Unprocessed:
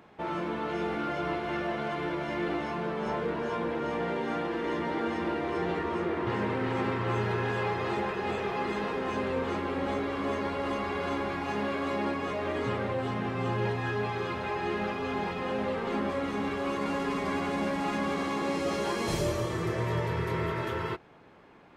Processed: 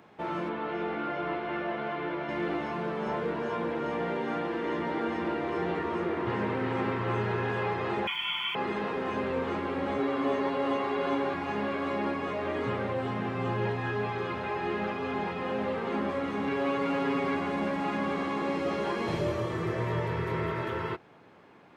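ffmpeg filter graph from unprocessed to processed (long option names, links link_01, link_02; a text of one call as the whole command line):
ffmpeg -i in.wav -filter_complex "[0:a]asettb=1/sr,asplit=3[link_01][link_02][link_03];[link_01]atrim=end=0.494[link_04];[link_02]atrim=start=0.49:end=2.29,asetpts=PTS-STARTPTS,afade=type=in:duration=0.004:curve=qsin,afade=type=out:start_time=1.796:duration=0.004:curve=qsin,lowpass=3500,equalizer=frequency=100:width_type=o:width=2.1:gain=-5.5[link_05];[link_03]atrim=start=2.286[link_06];[link_04][link_05]acrossfade=duration=0.004:curve1=hsin:curve2=qsin[link_07];[link_07][link_06]acrossfade=duration=0.004:curve1=qsin:curve2=hsin,asettb=1/sr,asplit=3[link_08][link_09][link_10];[link_08]atrim=end=8.074[link_11];[link_09]atrim=start=8.07:end=8.55,asetpts=PTS-STARTPTS,afade=type=in:duration=0.004:curve=qsin,afade=type=out:start_time=0.476:duration=0.004:curve=qsin,lowpass=frequency=3000:width_type=q:width=0.5098,lowpass=frequency=3000:width_type=q:width=0.6013,lowpass=frequency=3000:width_type=q:width=0.9,lowpass=frequency=3000:width_type=q:width=2.563,afreqshift=-3500,acrusher=bits=6:mix=0:aa=0.5,aecho=1:1:0.9:0.85,atrim=end_sample=21168[link_12];[link_10]atrim=start=8.546[link_13];[link_11][link_12]acrossfade=duration=0.004:curve1=hsin:curve2=qsin[link_14];[link_14][link_13]acrossfade=duration=0.004:curve1=qsin:curve2=hsin,asettb=1/sr,asplit=3[link_15][link_16][link_17];[link_15]atrim=end=9.984[link_18];[link_16]atrim=start=9.98:end=11.34,asetpts=PTS-STARTPTS,afade=type=in:duration=0.004:curve=qsin,afade=type=out:start_time=1.356:duration=0.004:curve=qsin,highpass=130,aecho=1:1:7.5:0.76,atrim=end_sample=59976[link_19];[link_17]atrim=start=11.336[link_20];[link_18][link_19]acrossfade=duration=0.004:curve1=hsin:curve2=qsin[link_21];[link_21][link_20]acrossfade=duration=0.004:curve1=qsin:curve2=hsin,asettb=1/sr,asplit=3[link_22][link_23][link_24];[link_22]atrim=end=16.474[link_25];[link_23]atrim=start=16.47:end=17.35,asetpts=PTS-STARTPTS,afade=type=in:duration=0.004:curve=qsin,afade=type=out:start_time=0.876:duration=0.004:curve=qsin,aecho=1:1:7.2:0.65,atrim=end_sample=38808,volume=23.5dB,asoftclip=hard,volume=-23.5dB[link_26];[link_24]atrim=start=17.346[link_27];[link_25][link_26]acrossfade=duration=0.004:curve1=hsin:curve2=qsin[link_28];[link_28][link_27]acrossfade=duration=0.004:curve1=qsin:curve2=hsin,acrossover=split=3600[link_29][link_30];[link_30]acompressor=threshold=-59dB:ratio=4:attack=1:release=60[link_31];[link_29][link_31]amix=inputs=2:normalize=0,highpass=82" out.wav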